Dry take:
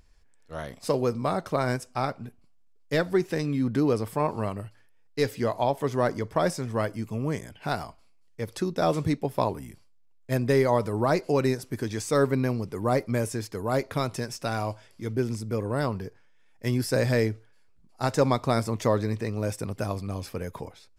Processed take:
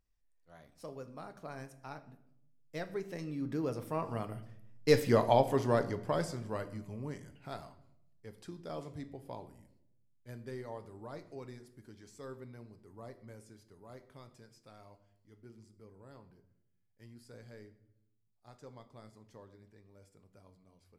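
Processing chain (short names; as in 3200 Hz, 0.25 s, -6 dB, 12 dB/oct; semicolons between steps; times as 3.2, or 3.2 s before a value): Doppler pass-by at 5.11, 21 m/s, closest 8.3 m; reverb RT60 0.80 s, pre-delay 7 ms, DRR 9.5 dB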